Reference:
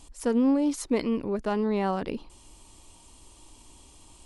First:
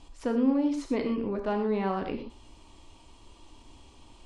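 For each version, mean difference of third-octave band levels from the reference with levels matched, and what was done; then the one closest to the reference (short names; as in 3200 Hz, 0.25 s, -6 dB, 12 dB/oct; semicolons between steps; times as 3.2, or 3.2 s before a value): 3.5 dB: LPF 4100 Hz 12 dB/oct; non-linear reverb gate 0.14 s flat, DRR 4.5 dB; in parallel at -1 dB: compressor, threshold -31 dBFS, peak gain reduction 14.5 dB; on the sum: gain -5.5 dB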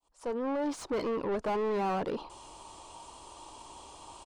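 7.0 dB: opening faded in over 1.02 s; downsampling 22050 Hz; graphic EQ 250/1000/2000 Hz -8/+4/-8 dB; overdrive pedal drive 28 dB, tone 1300 Hz, clips at -16.5 dBFS; gain -6.5 dB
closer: first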